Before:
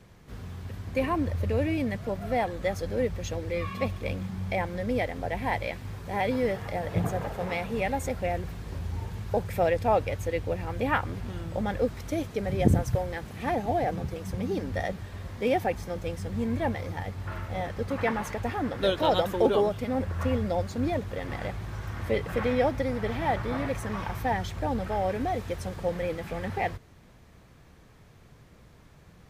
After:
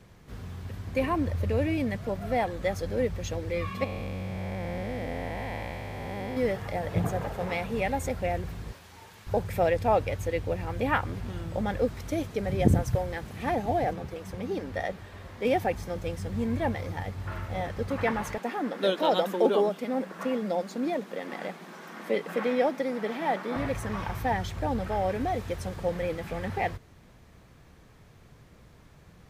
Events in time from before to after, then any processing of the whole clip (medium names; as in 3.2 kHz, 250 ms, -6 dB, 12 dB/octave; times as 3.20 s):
3.84–6.37 s: spectral blur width 467 ms
8.72–9.27 s: high-pass 1.2 kHz 6 dB/octave
13.93–15.45 s: tone controls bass -7 dB, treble -4 dB
18.38–23.56 s: elliptic high-pass 180 Hz